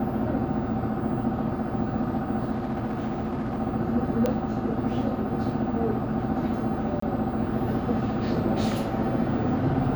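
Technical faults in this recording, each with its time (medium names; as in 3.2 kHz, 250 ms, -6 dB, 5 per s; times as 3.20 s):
2.51–3.61 s: clipped -24.5 dBFS
4.26 s: pop -13 dBFS
7.00–7.02 s: dropout 24 ms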